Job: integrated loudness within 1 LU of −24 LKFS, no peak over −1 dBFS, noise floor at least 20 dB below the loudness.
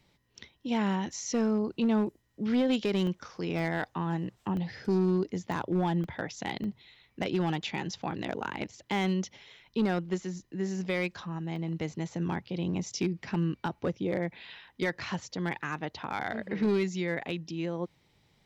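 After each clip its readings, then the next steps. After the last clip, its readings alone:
share of clipped samples 0.7%; peaks flattened at −21.0 dBFS; number of dropouts 7; longest dropout 1.1 ms; integrated loudness −32.0 LKFS; sample peak −21.0 dBFS; target loudness −24.0 LKFS
→ clipped peaks rebuilt −21 dBFS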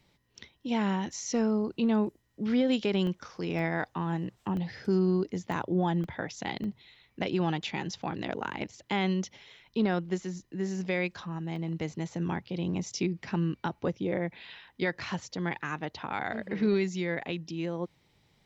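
share of clipped samples 0.0%; number of dropouts 7; longest dropout 1.1 ms
→ repair the gap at 0:03.07/0:03.59/0:04.57/0:05.52/0:06.04/0:06.64/0:11.56, 1.1 ms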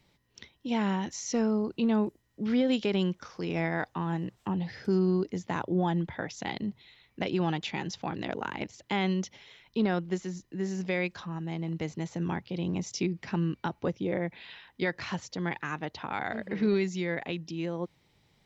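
number of dropouts 0; integrated loudness −31.5 LKFS; sample peak −17.0 dBFS; target loudness −24.0 LKFS
→ level +7.5 dB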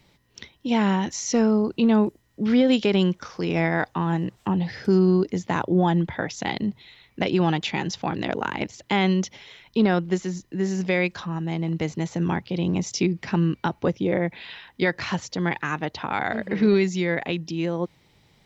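integrated loudness −24.0 LKFS; sample peak −9.5 dBFS; background noise floor −62 dBFS

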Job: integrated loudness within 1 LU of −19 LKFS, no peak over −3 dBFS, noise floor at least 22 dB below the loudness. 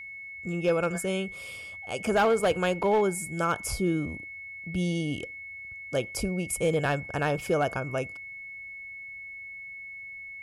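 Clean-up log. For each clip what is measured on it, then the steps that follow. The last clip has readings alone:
share of clipped samples 0.4%; peaks flattened at −17.5 dBFS; interfering tone 2,200 Hz; level of the tone −39 dBFS; integrated loudness −29.5 LKFS; sample peak −17.5 dBFS; target loudness −19.0 LKFS
→ clipped peaks rebuilt −17.5 dBFS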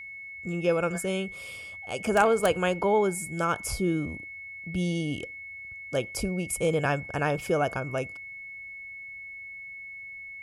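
share of clipped samples 0.0%; interfering tone 2,200 Hz; level of the tone −39 dBFS
→ notch filter 2,200 Hz, Q 30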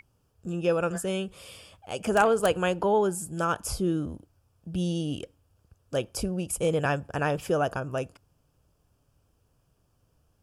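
interfering tone none found; integrated loudness −28.0 LKFS; sample peak −8.5 dBFS; target loudness −19.0 LKFS
→ level +9 dB
brickwall limiter −3 dBFS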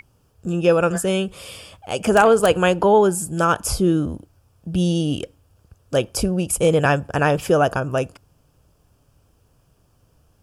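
integrated loudness −19.5 LKFS; sample peak −3.0 dBFS; background noise floor −61 dBFS

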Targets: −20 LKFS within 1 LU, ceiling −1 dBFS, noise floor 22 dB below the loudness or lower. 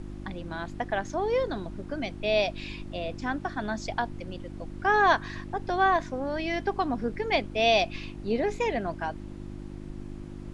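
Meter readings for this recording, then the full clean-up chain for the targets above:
mains hum 50 Hz; hum harmonics up to 350 Hz; level of the hum −38 dBFS; background noise floor −41 dBFS; target noise floor −51 dBFS; integrated loudness −28.5 LKFS; sample peak −10.0 dBFS; target loudness −20.0 LKFS
→ hum removal 50 Hz, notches 7
noise reduction from a noise print 10 dB
level +8.5 dB

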